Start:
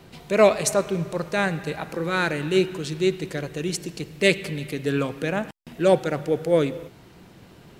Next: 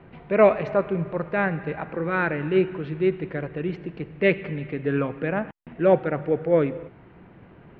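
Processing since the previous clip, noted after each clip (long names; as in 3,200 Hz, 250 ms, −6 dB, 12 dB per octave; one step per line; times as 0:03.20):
inverse Chebyshev low-pass filter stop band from 9,000 Hz, stop band 70 dB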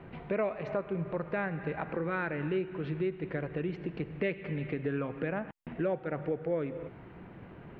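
downward compressor 4 to 1, threshold −31 dBFS, peak gain reduction 17 dB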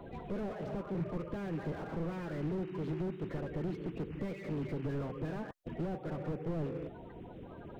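spectral magnitudes quantised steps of 30 dB
slew-rate limiting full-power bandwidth 5.6 Hz
level +1 dB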